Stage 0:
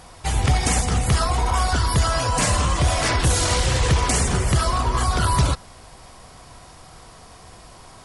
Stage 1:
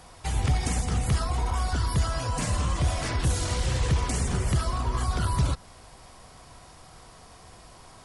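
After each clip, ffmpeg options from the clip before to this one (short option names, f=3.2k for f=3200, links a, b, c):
-filter_complex "[0:a]acrossover=split=330[a][b];[b]acompressor=threshold=-30dB:ratio=2[c];[a][c]amix=inputs=2:normalize=0,volume=-5dB"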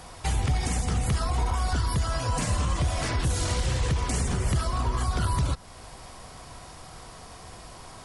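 -af "alimiter=limit=-22dB:level=0:latency=1:release=305,volume=5dB"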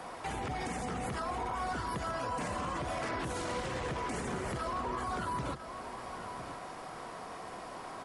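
-filter_complex "[0:a]acrossover=split=190 2400:gain=0.1 1 0.251[a][b][c];[a][b][c]amix=inputs=3:normalize=0,alimiter=level_in=7.5dB:limit=-24dB:level=0:latency=1:release=80,volume=-7.5dB,aecho=1:1:1003:0.282,volume=3.5dB"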